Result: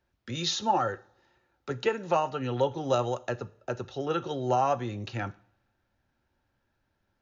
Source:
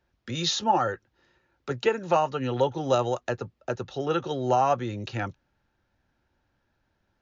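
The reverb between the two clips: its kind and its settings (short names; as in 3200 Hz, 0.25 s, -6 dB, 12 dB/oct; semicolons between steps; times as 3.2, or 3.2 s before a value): two-slope reverb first 0.48 s, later 1.8 s, from -25 dB, DRR 14 dB; gain -3 dB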